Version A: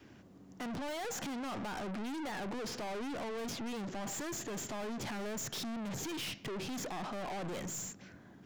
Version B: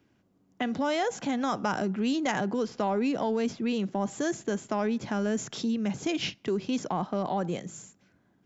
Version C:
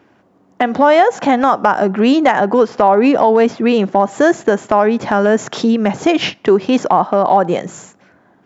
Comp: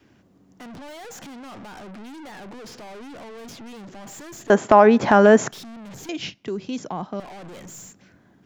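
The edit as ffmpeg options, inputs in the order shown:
-filter_complex "[0:a]asplit=3[a][b][c];[a]atrim=end=4.502[d];[2:a]atrim=start=4.498:end=5.512[e];[b]atrim=start=5.508:end=6.092[f];[1:a]atrim=start=6.088:end=7.202[g];[c]atrim=start=7.198[h];[d][e]acrossfade=d=0.004:c1=hsin:c2=hsin[i];[i][f]acrossfade=d=0.004:c1=hsin:c2=hsin[j];[j][g]acrossfade=d=0.004:c1=hsin:c2=hsin[k];[k][h]acrossfade=d=0.004:c1=hsin:c2=hsin"

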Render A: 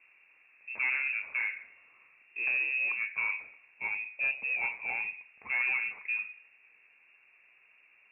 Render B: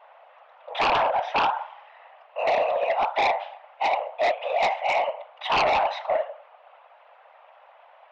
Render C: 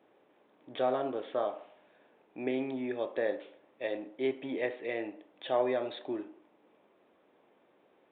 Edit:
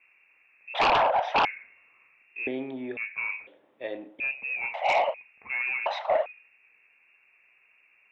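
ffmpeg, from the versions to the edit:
-filter_complex "[1:a]asplit=3[a][b][c];[2:a]asplit=2[d][e];[0:a]asplit=6[f][g][h][i][j][k];[f]atrim=end=0.742[l];[a]atrim=start=0.738:end=1.452[m];[g]atrim=start=1.448:end=2.472[n];[d]atrim=start=2.468:end=2.972[o];[h]atrim=start=2.968:end=3.472[p];[e]atrim=start=3.468:end=4.202[q];[i]atrim=start=4.198:end=4.742[r];[b]atrim=start=4.738:end=5.142[s];[j]atrim=start=5.138:end=5.862[t];[c]atrim=start=5.858:end=6.262[u];[k]atrim=start=6.258[v];[l][m]acrossfade=d=0.004:c1=hsin:c2=hsin[w];[w][n]acrossfade=d=0.004:c1=hsin:c2=hsin[x];[x][o]acrossfade=d=0.004:c1=hsin:c2=hsin[y];[y][p]acrossfade=d=0.004:c1=hsin:c2=hsin[z];[z][q]acrossfade=d=0.004:c1=hsin:c2=hsin[aa];[aa][r]acrossfade=d=0.004:c1=hsin:c2=hsin[ab];[ab][s]acrossfade=d=0.004:c1=hsin:c2=hsin[ac];[ac][t]acrossfade=d=0.004:c1=hsin:c2=hsin[ad];[ad][u]acrossfade=d=0.004:c1=hsin:c2=hsin[ae];[ae][v]acrossfade=d=0.004:c1=hsin:c2=hsin"

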